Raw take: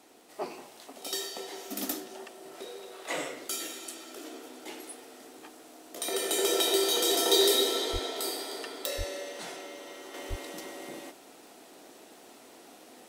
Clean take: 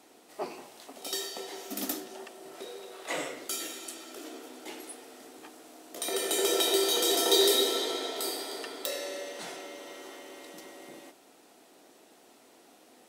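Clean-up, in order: de-click; de-plosive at 7.92/8.97/10.29; gain correction -5.5 dB, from 10.14

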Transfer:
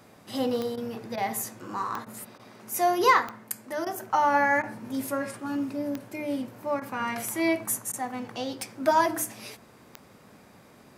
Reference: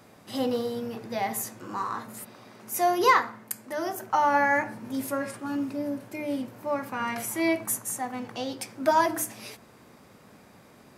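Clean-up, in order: de-click; interpolate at 0.76/1.16/2.05/2.38/3.85/4.62/6.8/7.92, 13 ms

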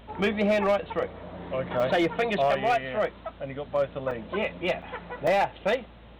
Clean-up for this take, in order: clip repair -17.5 dBFS; de-hum 56.6 Hz, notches 5; interpolate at 1.8/4.11/4.82/5.27, 3.8 ms

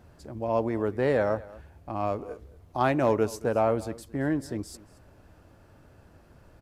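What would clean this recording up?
clip repair -12 dBFS; inverse comb 0.225 s -20 dB

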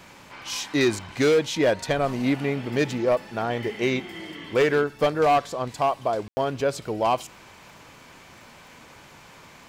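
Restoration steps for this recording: clip repair -14.5 dBFS; de-click; room tone fill 6.28–6.37

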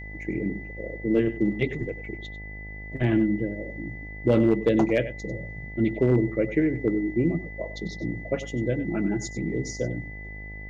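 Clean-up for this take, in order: clip repair -12.5 dBFS; de-hum 52.1 Hz, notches 17; notch 2000 Hz, Q 30; inverse comb 96 ms -13.5 dB

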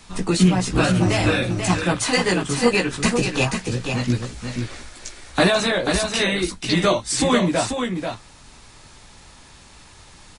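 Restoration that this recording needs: inverse comb 0.487 s -6 dB

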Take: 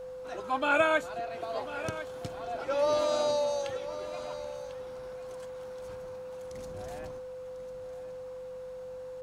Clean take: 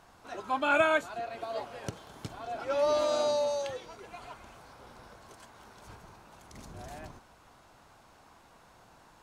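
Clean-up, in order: de-hum 47.1 Hz, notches 4; notch 510 Hz, Q 30; inverse comb 1.047 s -13.5 dB

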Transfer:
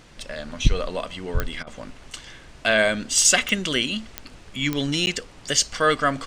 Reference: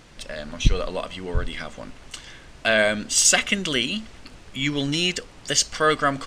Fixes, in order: de-click; interpolate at 5.06, 9.9 ms; interpolate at 1.63, 38 ms

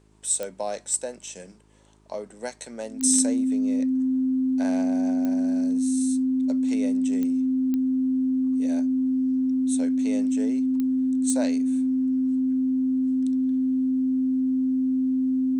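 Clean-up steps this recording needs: de-click; de-hum 52.5 Hz, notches 8; notch 260 Hz, Q 30

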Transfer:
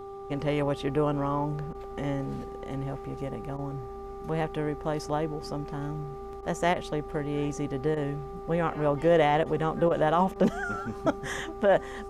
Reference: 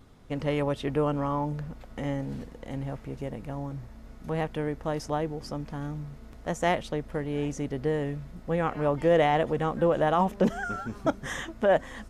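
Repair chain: de-hum 395 Hz, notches 3; interpolate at 1.73/3.57/6.41/6.74/7.95/9.44/9.89/10.34, 16 ms

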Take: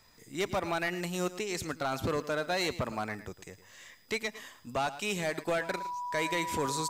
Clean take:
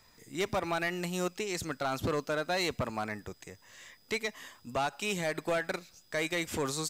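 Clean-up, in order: notch 980 Hz, Q 30; inverse comb 0.11 s -14.5 dB

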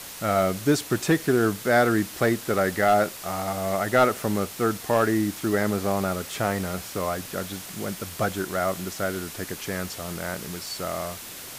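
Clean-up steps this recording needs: clip repair -11 dBFS; de-click; denoiser 30 dB, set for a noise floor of -39 dBFS

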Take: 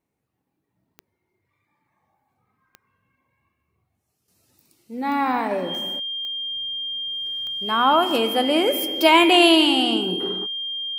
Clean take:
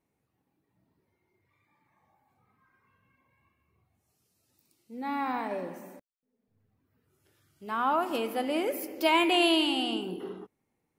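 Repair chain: de-click; notch 3200 Hz, Q 30; gain 0 dB, from 4.28 s -9.5 dB

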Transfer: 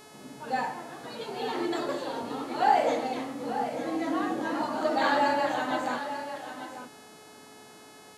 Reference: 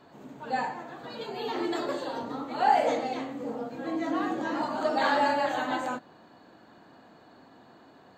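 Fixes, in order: de-hum 427.9 Hz, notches 28; inverse comb 0.892 s -10 dB

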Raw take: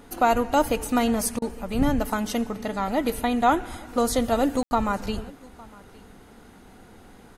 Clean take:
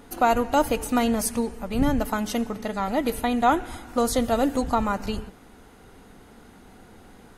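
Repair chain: room tone fill 4.63–4.71; interpolate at 1.39, 28 ms; inverse comb 0.859 s -23.5 dB

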